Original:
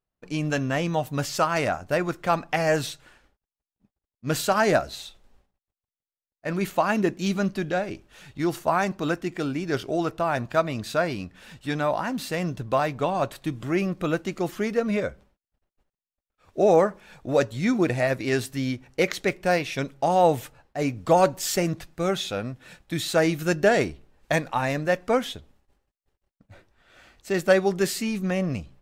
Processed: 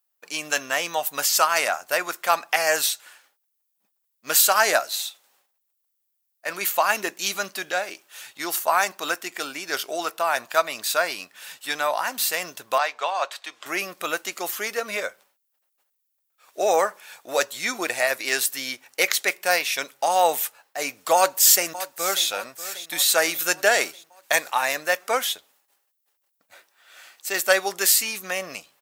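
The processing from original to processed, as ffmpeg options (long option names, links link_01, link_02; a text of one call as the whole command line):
ffmpeg -i in.wav -filter_complex "[0:a]asettb=1/sr,asplit=3[link_01][link_02][link_03];[link_01]atrim=end=12.784[link_04];[link_02]atrim=start=12.78:end=13.66,asetpts=PTS-STARTPTS,afade=type=in:duration=0.004:curve=qsin,afade=type=out:start_time=0.876:duration=0.004:curve=qsin,acrossover=split=440 6500:gain=0.0891 1 0.0794[link_05][link_06][link_07];[link_05][link_06][link_07]amix=inputs=3:normalize=0[link_08];[link_03]atrim=start=13.656[link_09];[link_04][link_08]acrossfade=duration=0.004:curve1=hsin:curve2=qsin[link_10];[link_10][link_09]acrossfade=duration=0.004:curve1=qsin:curve2=hsin,asplit=2[link_11][link_12];[link_12]afade=type=in:start_time=21.15:duration=0.01,afade=type=out:start_time=22.26:duration=0.01,aecho=0:1:590|1180|1770|2360|2950:0.188365|0.103601|0.0569804|0.0313392|0.0172366[link_13];[link_11][link_13]amix=inputs=2:normalize=0,highpass=790,aemphasis=mode=production:type=50fm,volume=5dB" out.wav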